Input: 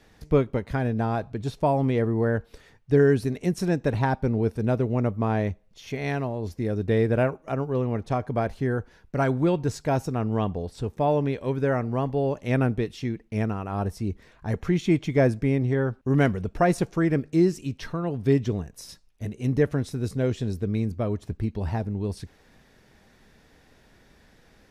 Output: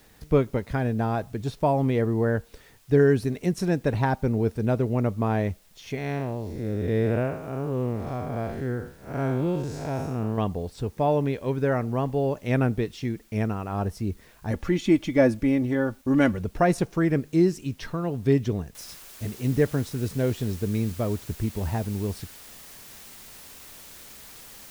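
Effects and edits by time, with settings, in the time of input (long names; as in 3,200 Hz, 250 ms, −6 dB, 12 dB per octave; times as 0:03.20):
0:05.98–0:10.38: spectrum smeared in time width 185 ms
0:14.51–0:16.39: comb filter 3.5 ms, depth 61%
0:18.75: noise floor change −61 dB −46 dB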